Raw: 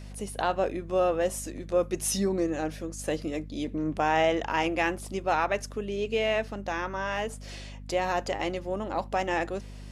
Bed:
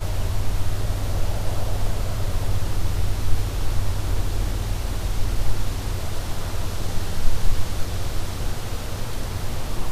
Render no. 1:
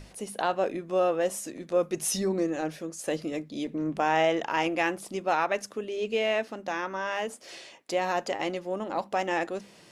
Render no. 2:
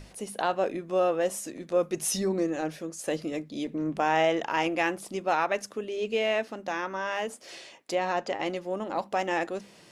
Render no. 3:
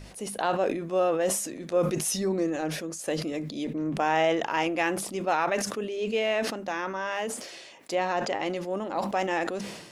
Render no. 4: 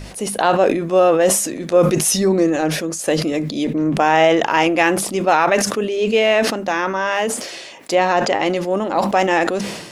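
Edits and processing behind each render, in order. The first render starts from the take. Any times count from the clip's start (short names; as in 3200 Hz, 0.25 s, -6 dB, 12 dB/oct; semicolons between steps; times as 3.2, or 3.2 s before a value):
notches 50/100/150/200/250 Hz
7.95–8.46 air absorption 66 m
sustainer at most 55 dB/s
gain +11.5 dB; limiter -3 dBFS, peak gain reduction 2 dB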